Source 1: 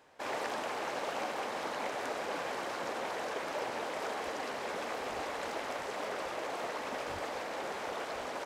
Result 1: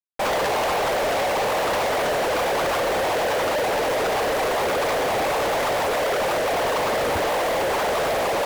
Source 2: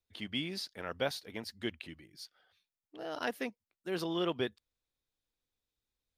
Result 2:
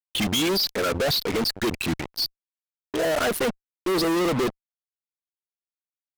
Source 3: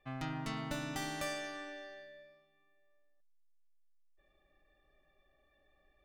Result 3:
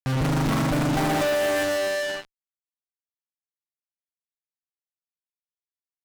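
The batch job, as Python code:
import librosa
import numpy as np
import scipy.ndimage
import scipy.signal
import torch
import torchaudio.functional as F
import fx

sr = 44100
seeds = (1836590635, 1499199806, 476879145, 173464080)

y = fx.envelope_sharpen(x, sr, power=2.0)
y = fx.fuzz(y, sr, gain_db=60.0, gate_db=-53.0)
y = y * 10.0 ** (-8.0 / 20.0)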